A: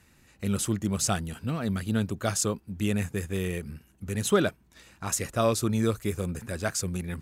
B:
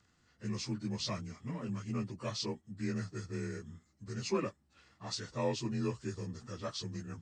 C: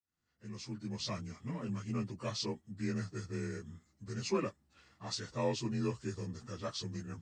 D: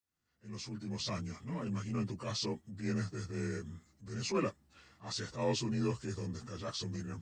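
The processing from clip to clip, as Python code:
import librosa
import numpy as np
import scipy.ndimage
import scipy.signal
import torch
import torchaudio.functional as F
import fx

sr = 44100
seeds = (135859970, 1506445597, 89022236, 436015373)

y1 = fx.partial_stretch(x, sr, pct=87)
y1 = F.gain(torch.from_numpy(y1), -8.5).numpy()
y2 = fx.fade_in_head(y1, sr, length_s=1.31)
y3 = fx.transient(y2, sr, attack_db=-8, sustain_db=2)
y3 = F.gain(torch.from_numpy(y3), 2.5).numpy()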